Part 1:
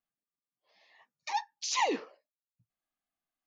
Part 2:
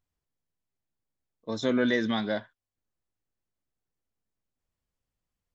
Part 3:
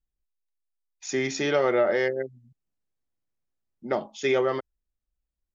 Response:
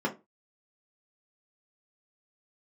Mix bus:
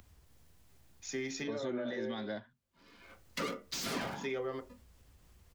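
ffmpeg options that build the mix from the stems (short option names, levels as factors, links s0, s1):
-filter_complex "[0:a]aeval=exprs='0.126*sin(PI/2*5.62*val(0)/0.126)':c=same,aeval=exprs='val(0)*sgn(sin(2*PI*370*n/s))':c=same,adelay=2100,volume=0.316,afade=t=in:st=3.17:d=0.21:silence=0.421697,asplit=2[s0][s1];[s1]volume=0.596[s2];[1:a]equalizer=f=65:w=1.1:g=13,alimiter=limit=0.133:level=0:latency=1,acompressor=mode=upward:threshold=0.0316:ratio=2.5,volume=0.447,asplit=2[s3][s4];[2:a]volume=0.447,asplit=2[s5][s6];[s6]volume=0.141[s7];[s4]apad=whole_len=244520[s8];[s5][s8]sidechaincompress=threshold=0.002:ratio=8:attack=16:release=390[s9];[3:a]atrim=start_sample=2205[s10];[s2][s7]amix=inputs=2:normalize=0[s11];[s11][s10]afir=irnorm=-1:irlink=0[s12];[s0][s3][s9][s12]amix=inputs=4:normalize=0,acrossover=split=150|320[s13][s14][s15];[s13]acompressor=threshold=0.00112:ratio=4[s16];[s14]acompressor=threshold=0.00794:ratio=4[s17];[s15]acompressor=threshold=0.0126:ratio=4[s18];[s16][s17][s18]amix=inputs=3:normalize=0"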